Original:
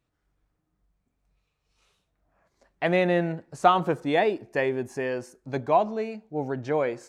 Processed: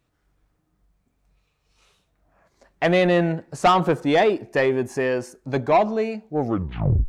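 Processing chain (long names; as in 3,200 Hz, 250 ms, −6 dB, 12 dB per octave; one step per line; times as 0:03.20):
turntable brake at the end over 0.69 s
soft clipping −17.5 dBFS, distortion −13 dB
level +7 dB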